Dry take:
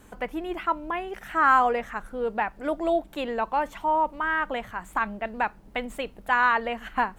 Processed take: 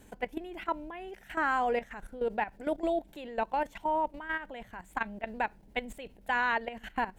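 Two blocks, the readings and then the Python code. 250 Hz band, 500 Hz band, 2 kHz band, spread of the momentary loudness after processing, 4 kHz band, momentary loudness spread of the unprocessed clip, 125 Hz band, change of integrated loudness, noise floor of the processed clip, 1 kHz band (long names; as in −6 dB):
−5.5 dB, −5.0 dB, −7.0 dB, 12 LU, −6.0 dB, 12 LU, can't be measured, −7.0 dB, −57 dBFS, −8.0 dB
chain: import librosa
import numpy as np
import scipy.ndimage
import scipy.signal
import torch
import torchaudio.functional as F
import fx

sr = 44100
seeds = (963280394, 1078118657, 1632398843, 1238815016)

y = fx.peak_eq(x, sr, hz=1200.0, db=-12.0, octaves=0.41)
y = fx.level_steps(y, sr, step_db=14)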